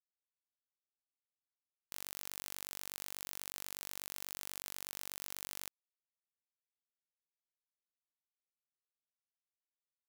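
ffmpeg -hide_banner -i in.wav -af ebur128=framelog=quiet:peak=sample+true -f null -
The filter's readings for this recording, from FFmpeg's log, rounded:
Integrated loudness:
  I:         -43.5 LUFS
  Threshold: -53.5 LUFS
Loudness range:
  LRA:         7.1 LU
  Threshold: -65.1 LUFS
  LRA low:   -50.3 LUFS
  LRA high:  -43.1 LUFS
Sample peak:
  Peak:      -16.6 dBFS
True peak:
  Peak:      -16.6 dBFS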